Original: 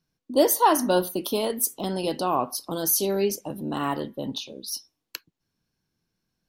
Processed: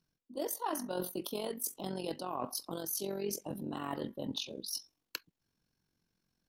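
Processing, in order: reverse; compression 6:1, threshold -32 dBFS, peak gain reduction 17 dB; reverse; AM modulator 45 Hz, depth 50%

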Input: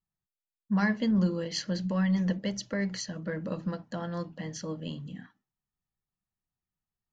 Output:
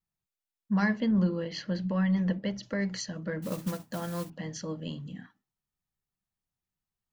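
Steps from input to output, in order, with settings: 1.00–2.63 s: low-pass 3.5 kHz 12 dB/octave; 3.42–4.30 s: modulation noise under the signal 14 dB

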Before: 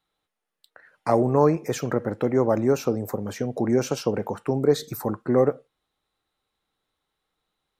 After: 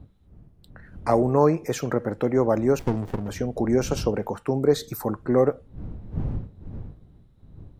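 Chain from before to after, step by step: wind noise 120 Hz -38 dBFS; 2.79–3.28 s: sliding maximum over 33 samples

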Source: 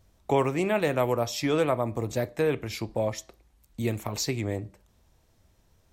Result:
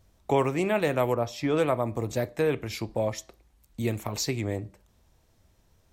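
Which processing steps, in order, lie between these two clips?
1.14–1.57 s: treble shelf 3.5 kHz -11.5 dB

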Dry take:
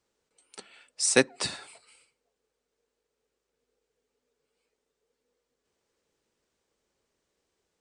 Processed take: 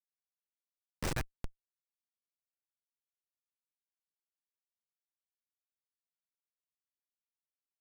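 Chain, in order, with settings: steep high-pass 620 Hz 96 dB/octave; Schmitt trigger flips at -19 dBFS; trim +7.5 dB

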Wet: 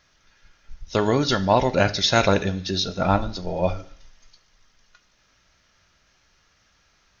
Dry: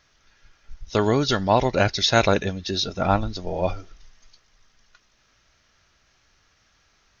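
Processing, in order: feedback echo behind a high-pass 72 ms, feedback 68%, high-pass 1.9 kHz, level -22.5 dB; on a send at -10 dB: reverberation RT60 0.50 s, pre-delay 3 ms

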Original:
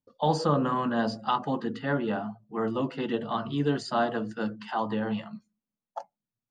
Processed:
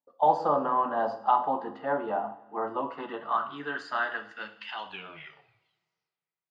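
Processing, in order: tape stop on the ending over 1.76 s; two-slope reverb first 0.57 s, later 2.5 s, from -20 dB, DRR 7.5 dB; band-pass sweep 790 Hz -> 6 kHz, 2.57–6.25 s; trim +7 dB

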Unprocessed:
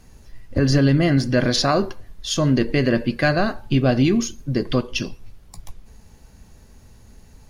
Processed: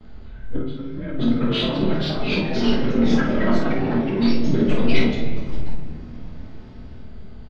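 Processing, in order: frequency axis rescaled in octaves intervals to 89%; gate with hold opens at -48 dBFS; treble shelf 6.9 kHz -11 dB; compressor with a negative ratio -25 dBFS, ratio -0.5; wavefolder -15.5 dBFS; ever faster or slower copies 728 ms, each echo +3 st, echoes 3; distance through air 220 m; early reflections 26 ms -6.5 dB, 51 ms -5 dB; on a send at -3.5 dB: reverberation RT60 2.1 s, pre-delay 5 ms

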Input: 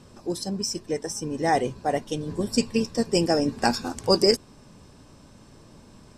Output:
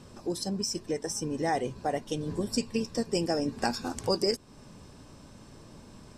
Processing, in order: compression 2:1, threshold -30 dBFS, peak gain reduction 9 dB

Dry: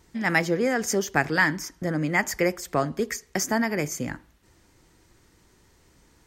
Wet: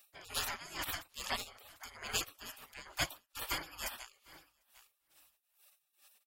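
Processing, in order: in parallel at -5 dB: hard clipper -17.5 dBFS, distortion -13 dB; on the sum: rippled EQ curve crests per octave 1.8, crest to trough 7 dB; spectral gate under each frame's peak -30 dB weak; peaking EQ 6.5 kHz -6 dB 2.2 oct; feedback delay 747 ms, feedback 18%, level -24 dB; logarithmic tremolo 2.3 Hz, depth 19 dB; trim +11 dB

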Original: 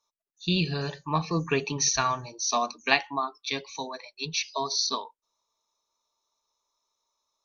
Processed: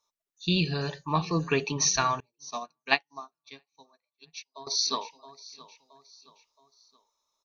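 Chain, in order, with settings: feedback delay 672 ms, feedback 42%, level -20 dB; 2.20–4.67 s: upward expansion 2.5:1, over -46 dBFS

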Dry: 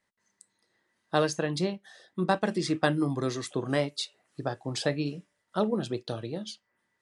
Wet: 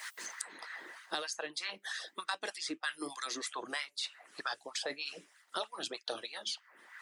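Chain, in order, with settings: amplifier tone stack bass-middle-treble 5-5-5; harmonic-percussive split harmonic -13 dB; reverse; compression 6:1, threshold -53 dBFS, peak gain reduction 18 dB; reverse; LFO high-pass sine 3.2 Hz 290–1500 Hz; three bands compressed up and down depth 100%; trim +16 dB

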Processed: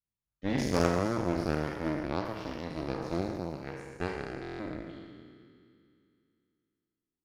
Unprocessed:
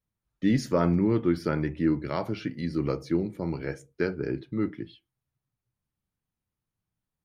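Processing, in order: spectral sustain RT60 2.74 s; Chebyshev shaper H 3 -12 dB, 6 -22 dB, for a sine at -7 dBFS; buffer glitch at 4.41 s, samples 1024, times 7; trim -3 dB

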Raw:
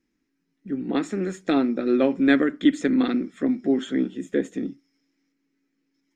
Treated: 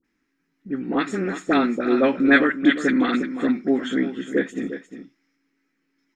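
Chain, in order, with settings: peaking EQ 1.5 kHz +9 dB 1.9 oct; phase dispersion highs, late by 44 ms, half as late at 1.2 kHz; on a send: delay 353 ms -11 dB

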